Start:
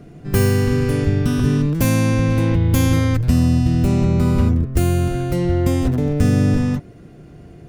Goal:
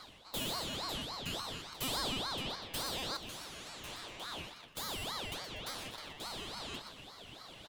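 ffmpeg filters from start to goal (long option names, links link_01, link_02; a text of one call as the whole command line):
ffmpeg -i in.wav -af "areverse,acompressor=threshold=-28dB:ratio=10,areverse,highpass=frequency=1400:width_type=q:width=2.7,aecho=1:1:121|242|363|484:0.355|0.142|0.0568|0.0227,aeval=exprs='val(0)*sin(2*PI*2000*n/s+2000*0.35/3.5*sin(2*PI*3.5*n/s))':channel_layout=same,volume=5dB" out.wav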